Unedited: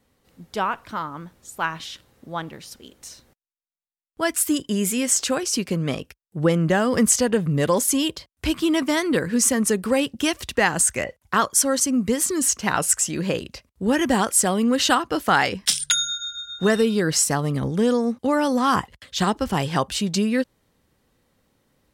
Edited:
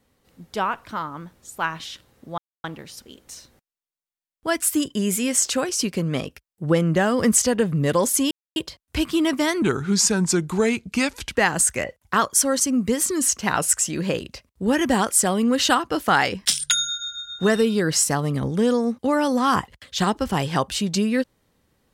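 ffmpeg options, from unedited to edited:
-filter_complex "[0:a]asplit=5[s0][s1][s2][s3][s4];[s0]atrim=end=2.38,asetpts=PTS-STARTPTS,afade=t=out:st=2.376:d=0.004:c=hsin,apad=pad_dur=0.26[s5];[s1]atrim=start=2.38:end=8.05,asetpts=PTS-STARTPTS,afade=t=in:d=0.004:c=hsin,afade=t=out:st=5.666:d=0.004:c=hsin,apad=pad_dur=0.25[s6];[s2]atrim=start=8.05:end=9.114,asetpts=PTS-STARTPTS,afade=t=in:d=0.004:c=hsin[s7];[s3]atrim=start=9.11:end=10.52,asetpts=PTS-STARTPTS,asetrate=36603,aresample=44100[s8];[s4]atrim=start=10.516[s9];[s5][s6][s7]concat=n=3:v=0:a=1[s10];[s10][s8]acrossfade=d=0.004:c1=hsin:c2=hsin[s11];[s11][s9]acrossfade=d=0.004:c1=hsin:c2=hsin"

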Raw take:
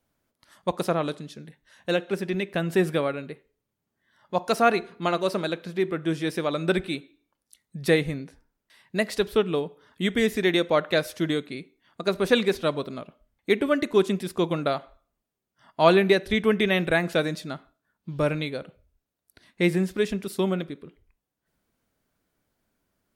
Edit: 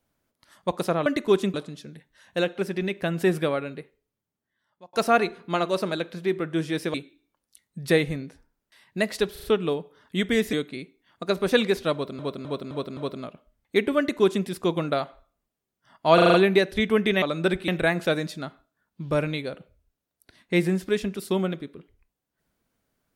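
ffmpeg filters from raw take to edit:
-filter_complex "[0:a]asplit=20[s0][s1][s2][s3][s4][s5][s6][s7][s8][s9][s10][s11][s12][s13][s14][s15][s16][s17][s18][s19];[s0]atrim=end=1.062[s20];[s1]atrim=start=13.718:end=14.202[s21];[s2]atrim=start=1.058:end=4.45,asetpts=PTS-STARTPTS,afade=t=out:st=2.242:d=1.15[s22];[s3]atrim=start=4.45:end=6.462,asetpts=PTS-STARTPTS,afade=t=in:d=0.004:c=hsin[s23];[s4]atrim=start=6.918:end=9.342[s24];[s5]atrim=start=9.298:end=9.342[s25];[s6]atrim=start=9.298:end=9.342[s26];[s7]atrim=start=9.298:end=10.392[s27];[s8]atrim=start=11.308:end=12.972[s28];[s9]atrim=start=12.708:end=12.972[s29];[s10]atrim=start=12.708:end=12.972[s30];[s11]atrim=start=12.708:end=12.972[s31];[s12]atrim=start=12.708:end=15.922[s32];[s13]atrim=start=15.878:end=15.922[s33];[s14]atrim=start=15.878:end=15.922[s34];[s15]atrim=start=15.878:end=15.922[s35];[s16]atrim=start=15.878:end=15.922[s36];[s17]atrim=start=15.878:end=16.762[s37];[s18]atrim=start=6.458:end=6.922[s38];[s19]atrim=start=16.758[s39];[s20][s21]acrossfade=d=0.004:c1=hsin:c2=hsin[s40];[s22][s23]concat=n=2:v=0:a=1[s41];[s40][s41]acrossfade=d=0.004:c1=hsin:c2=hsin[s42];[s42][s24]acrossfade=d=0.004:c1=hsin:c2=hsin[s43];[s43][s25]acrossfade=d=0.004:c1=hsin:c2=hsin[s44];[s44][s26]acrossfade=d=0.004:c1=hsin:c2=hsin[s45];[s45][s27]acrossfade=d=0.004:c1=hsin:c2=hsin[s46];[s46][s28]acrossfade=d=0.004:c1=hsin:c2=hsin[s47];[s47][s29]acrossfade=d=0.004:c1=hsin:c2=hsin[s48];[s48][s30]acrossfade=d=0.004:c1=hsin:c2=hsin[s49];[s49][s31]acrossfade=d=0.004:c1=hsin:c2=hsin[s50];[s50][s32]acrossfade=d=0.004:c1=hsin:c2=hsin[s51];[s51][s33]acrossfade=d=0.004:c1=hsin:c2=hsin[s52];[s52][s34]acrossfade=d=0.004:c1=hsin:c2=hsin[s53];[s53][s35]acrossfade=d=0.004:c1=hsin:c2=hsin[s54];[s54][s36]acrossfade=d=0.004:c1=hsin:c2=hsin[s55];[s55][s37]acrossfade=d=0.004:c1=hsin:c2=hsin[s56];[s56][s38]acrossfade=d=0.004:c1=hsin:c2=hsin[s57];[s57][s39]acrossfade=d=0.004:c1=hsin:c2=hsin"

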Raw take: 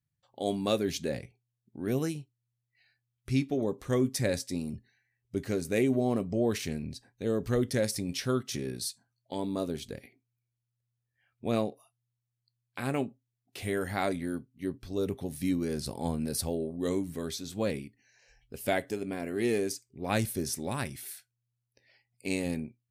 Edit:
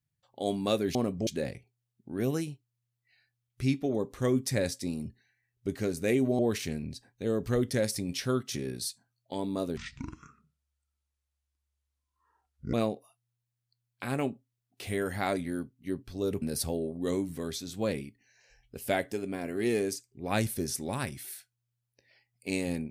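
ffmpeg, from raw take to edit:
-filter_complex "[0:a]asplit=7[s0][s1][s2][s3][s4][s5][s6];[s0]atrim=end=0.952[s7];[s1]atrim=start=6.068:end=6.392[s8];[s2]atrim=start=0.948:end=6.072[s9];[s3]atrim=start=6.388:end=9.774[s10];[s4]atrim=start=9.77:end=11.49,asetpts=PTS-STARTPTS,asetrate=25578,aresample=44100,atrim=end_sample=130779,asetpts=PTS-STARTPTS[s11];[s5]atrim=start=11.486:end=15.172[s12];[s6]atrim=start=16.198[s13];[s7][s8]acrossfade=d=0.004:c1=hsin:c2=hsin[s14];[s14][s9]acrossfade=d=0.004:c1=hsin:c2=hsin[s15];[s15][s10]acrossfade=d=0.004:c1=hsin:c2=hsin[s16];[s16][s11]acrossfade=d=0.004:c1=hsin:c2=hsin[s17];[s17][s12]acrossfade=d=0.004:c1=hsin:c2=hsin[s18];[s18][s13]acrossfade=d=0.004:c1=hsin:c2=hsin"

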